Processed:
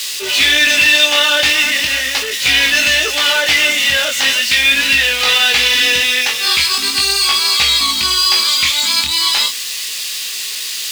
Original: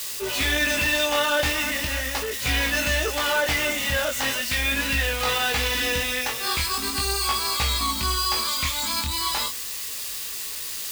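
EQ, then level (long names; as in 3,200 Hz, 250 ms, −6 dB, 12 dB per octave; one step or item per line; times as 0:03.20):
meter weighting curve D
+3.5 dB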